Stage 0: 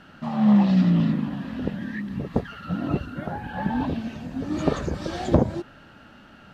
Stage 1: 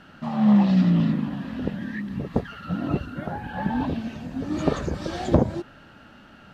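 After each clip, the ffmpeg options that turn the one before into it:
-af anull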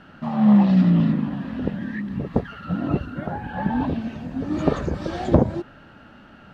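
-af "highshelf=f=3800:g=-9.5,volume=1.33"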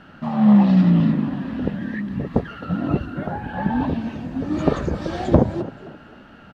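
-filter_complex "[0:a]asplit=4[s0][s1][s2][s3];[s1]adelay=262,afreqshift=41,volume=0.15[s4];[s2]adelay=524,afreqshift=82,volume=0.0479[s5];[s3]adelay=786,afreqshift=123,volume=0.0153[s6];[s0][s4][s5][s6]amix=inputs=4:normalize=0,volume=1.19"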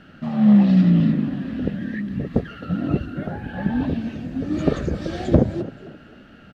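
-af "equalizer=f=950:t=o:w=0.68:g=-11.5"

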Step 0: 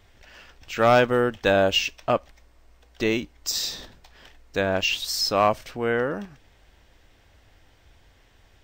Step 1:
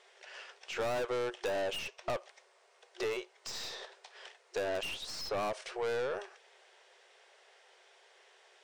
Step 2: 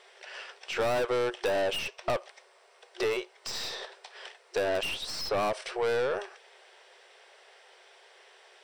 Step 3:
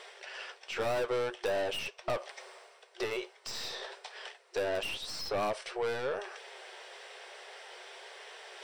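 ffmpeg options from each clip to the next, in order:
-filter_complex "[0:a]afftfilt=real='re*between(b*sr/4096,360,11000)':imag='im*between(b*sr/4096,360,11000)':win_size=4096:overlap=0.75,aeval=exprs='(tanh(22.4*val(0)+0.2)-tanh(0.2))/22.4':c=same,acrossover=split=1400|2800[s0][s1][s2];[s0]acompressor=threshold=0.0251:ratio=4[s3];[s1]acompressor=threshold=0.00447:ratio=4[s4];[s2]acompressor=threshold=0.00447:ratio=4[s5];[s3][s4][s5]amix=inputs=3:normalize=0"
-af "bandreject=f=6700:w=7.1,volume=2"
-af "areverse,acompressor=mode=upward:threshold=0.0224:ratio=2.5,areverse,flanger=delay=6.3:depth=4.1:regen=-55:speed=0.48:shape=triangular"

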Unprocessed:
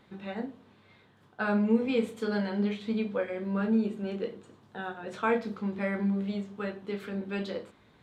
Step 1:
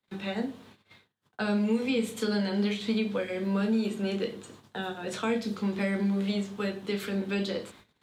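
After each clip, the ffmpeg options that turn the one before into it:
-filter_complex "[0:a]agate=range=0.02:threshold=0.00141:ratio=16:detection=peak,highshelf=f=2800:g=12,acrossover=split=140|320|650|2700[s0][s1][s2][s3][s4];[s0]acompressor=threshold=0.00316:ratio=4[s5];[s1]acompressor=threshold=0.0224:ratio=4[s6];[s2]acompressor=threshold=0.01:ratio=4[s7];[s3]acompressor=threshold=0.00501:ratio=4[s8];[s4]acompressor=threshold=0.00631:ratio=4[s9];[s5][s6][s7][s8][s9]amix=inputs=5:normalize=0,volume=1.78"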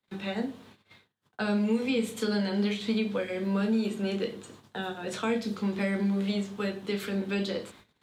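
-af anull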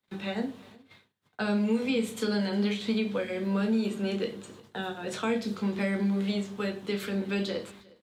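-af "aecho=1:1:358:0.0668"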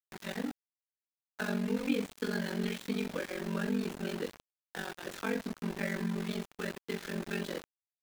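-af "highpass=150,equalizer=f=290:t=q:w=4:g=9,equalizer=f=1700:t=q:w=4:g=9,equalizer=f=5000:t=q:w=4:g=-5,lowpass=f=7000:w=0.5412,lowpass=f=7000:w=1.3066,aeval=exprs='val(0)*gte(abs(val(0)),0.0237)':c=same,aeval=exprs='val(0)*sin(2*PI*23*n/s)':c=same,volume=0.631"

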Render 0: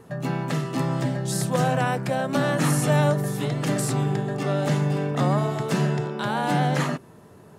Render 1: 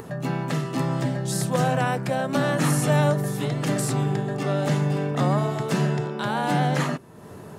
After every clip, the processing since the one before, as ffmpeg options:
-af "acompressor=mode=upward:threshold=0.0282:ratio=2.5"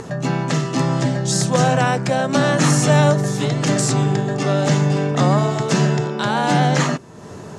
-af "lowpass=f=6600:t=q:w=2.2,volume=2"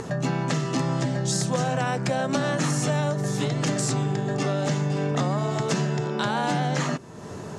-af "acompressor=threshold=0.1:ratio=6,volume=0.841"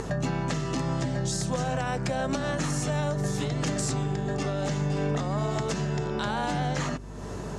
-af "alimiter=limit=0.112:level=0:latency=1:release=332,aeval=exprs='val(0)+0.01*(sin(2*PI*50*n/s)+sin(2*PI*2*50*n/s)/2+sin(2*PI*3*50*n/s)/3+sin(2*PI*4*50*n/s)/4+sin(2*PI*5*50*n/s)/5)':c=same"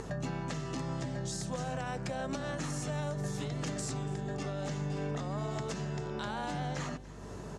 -af "aecho=1:1:287:0.119,volume=0.398"

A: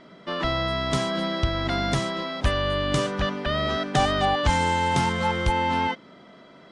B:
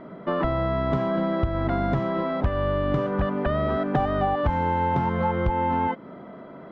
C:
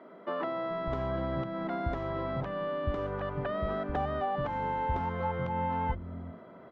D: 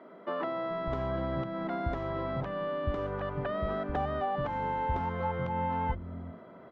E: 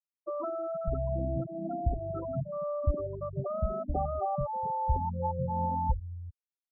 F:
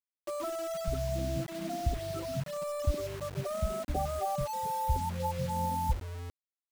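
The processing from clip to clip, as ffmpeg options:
-af "lowpass=1200,acompressor=threshold=0.0316:ratio=4,volume=2.66"
-filter_complex "[0:a]bandreject=f=50:t=h:w=6,bandreject=f=100:t=h:w=6,bandreject=f=150:t=h:w=6,bandreject=f=200:t=h:w=6,bandreject=f=250:t=h:w=6,bandreject=f=300:t=h:w=6,bandreject=f=350:t=h:w=6,acrossover=split=220[s0][s1];[s0]adelay=430[s2];[s2][s1]amix=inputs=2:normalize=0,volume=0.422"
-af anull
-af "afftfilt=real='re*gte(hypot(re,im),0.0891)':imag='im*gte(hypot(re,im),0.0891)':win_size=1024:overlap=0.75,lowshelf=f=81:g=8.5,volume=1.12"
-af "acrusher=bits=6:mix=0:aa=0.000001,volume=0.841"

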